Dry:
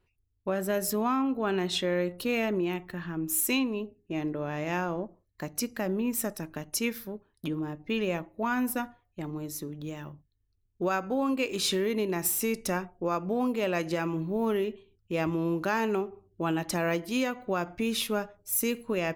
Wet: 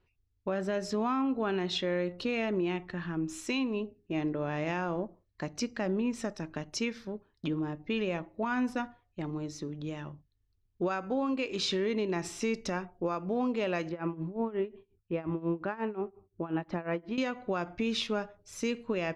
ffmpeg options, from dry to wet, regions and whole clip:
-filter_complex "[0:a]asettb=1/sr,asplit=3[s0][s1][s2];[s0]atrim=end=13.894[s3];[s1]atrim=start=13.89:end=17.18,asetpts=PTS-STARTPTS,afade=t=in:d=0.004:c=qsin,afade=t=out:st=3.286:d=0.004:c=qsin,lowpass=1900,tremolo=f=5.6:d=0.87[s4];[s2]atrim=start=17.176[s5];[s3][s4]acrossfade=d=0.004:c1=hsin:c2=qsin[s6];[s6][s5]acrossfade=d=0.004:c1=qsin:c2=hsin,lowpass=f=5900:w=0.5412,lowpass=f=5900:w=1.3066,alimiter=limit=0.0794:level=0:latency=1:release=232"

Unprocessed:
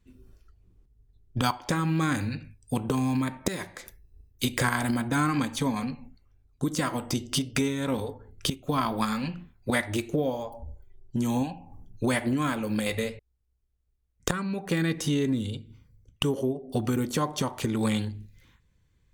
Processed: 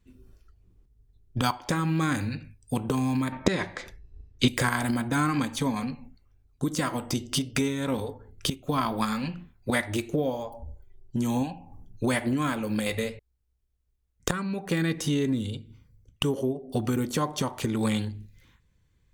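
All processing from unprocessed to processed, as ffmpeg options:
-filter_complex "[0:a]asettb=1/sr,asplit=3[s0][s1][s2];[s0]atrim=end=3.324[s3];[s1]atrim=start=3.32:end=4.48,asetpts=PTS-STARTPTS,afade=t=in:d=0.004:c=qsin,afade=t=out:st=1.156:d=0.004:c=qsin,lowpass=4600,acontrast=61[s4];[s2]atrim=start=4.476[s5];[s3][s4]acrossfade=d=0.004:c1=hsin:c2=qsin[s6];[s6][s5]acrossfade=d=0.004:c1=qsin:c2=hsin"

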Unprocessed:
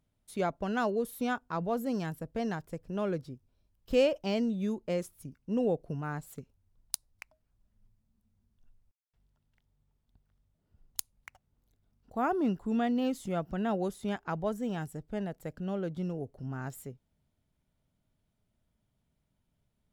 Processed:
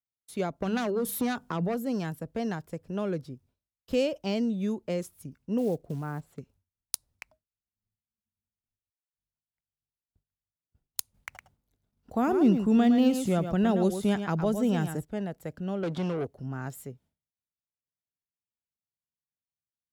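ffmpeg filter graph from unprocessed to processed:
-filter_complex "[0:a]asettb=1/sr,asplit=3[s0][s1][s2];[s0]atrim=end=0.624[s3];[s1]atrim=start=0.62:end=1.75,asetpts=PTS-STARTPTS,afade=t=in:d=0.004:c=qsin,afade=t=out:st=1.126:d=0.004:c=qsin,aeval=exprs='0.119*sin(PI/2*2*val(0)/0.119)':c=same,acompressor=threshold=0.0398:ratio=3:attack=3.2:release=140:knee=1:detection=peak,bandreject=f=50:t=h:w=6,bandreject=f=100:t=h:w=6,bandreject=f=150:t=h:w=6,bandreject=f=200:t=h:w=6[s4];[s2]atrim=start=1.746[s5];[s3][s4]acrossfade=d=0.004:c1=hsin:c2=qsin[s6];[s6][s5]acrossfade=d=0.004:c1=qsin:c2=hsin,asettb=1/sr,asplit=3[s7][s8][s9];[s7]atrim=end=5.584[s10];[s8]atrim=start=5.58:end=6.38,asetpts=PTS-STARTPTS,afade=t=in:d=0.004:c=qsin,afade=t=out:st=0.796:d=0.004:c=qsin,lowpass=f=1300:p=1,acrusher=bits=7:mode=log:mix=0:aa=0.000001[s11];[s9]atrim=start=6.376[s12];[s10][s11]acrossfade=d=0.004:c1=hsin:c2=qsin[s13];[s13][s12]acrossfade=d=0.004:c1=qsin:c2=hsin,asettb=1/sr,asplit=3[s14][s15][s16];[s14]atrim=end=11.144[s17];[s15]atrim=start=11.14:end=15.05,asetpts=PTS-STARTPTS,afade=t=in:d=0.004:c=qsin,afade=t=out:st=3.906:d=0.004:c=qsin,acontrast=54,aecho=1:1:110:0.355,atrim=end_sample=172431[s18];[s16]atrim=start=15.046[s19];[s17][s18]acrossfade=d=0.004:c1=hsin:c2=qsin[s20];[s20][s19]acrossfade=d=0.004:c1=qsin:c2=hsin,asettb=1/sr,asplit=3[s21][s22][s23];[s21]atrim=end=15.834[s24];[s22]atrim=start=15.83:end=16.27,asetpts=PTS-STARTPTS,afade=t=in:d=0.004:c=qsin,afade=t=out:st=0.436:d=0.004:c=qsin,asplit=2[s25][s26];[s26]highpass=f=720:p=1,volume=14.1,asoftclip=type=tanh:threshold=0.0596[s27];[s25][s27]amix=inputs=2:normalize=0,lowpass=f=7000:p=1,volume=0.501,highshelf=f=7100:g=-8.5[s28];[s23]atrim=start=16.266[s29];[s24][s28]acrossfade=d=0.004:c1=hsin:c2=qsin[s30];[s30][s29]acrossfade=d=0.004:c1=qsin:c2=hsin,highpass=56,agate=range=0.0224:threshold=0.00112:ratio=3:detection=peak,acrossover=split=430|3000[s31][s32][s33];[s32]acompressor=threshold=0.0141:ratio=2.5[s34];[s31][s34][s33]amix=inputs=3:normalize=0,volume=1.33"

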